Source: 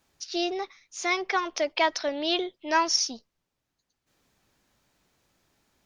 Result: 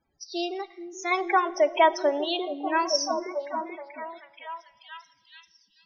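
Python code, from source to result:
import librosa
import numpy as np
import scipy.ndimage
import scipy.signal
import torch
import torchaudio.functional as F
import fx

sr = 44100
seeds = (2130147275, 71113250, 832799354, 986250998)

y = fx.peak_eq(x, sr, hz=760.0, db=9.0, octaves=1.8, at=(1.11, 2.24))
y = fx.echo_stepped(y, sr, ms=434, hz=220.0, octaves=0.7, feedback_pct=70, wet_db=-2.0)
y = fx.spec_topn(y, sr, count=32)
y = fx.rev_fdn(y, sr, rt60_s=1.1, lf_ratio=0.85, hf_ratio=0.85, size_ms=29.0, drr_db=16.0)
y = F.gain(torch.from_numpy(y), -2.0).numpy()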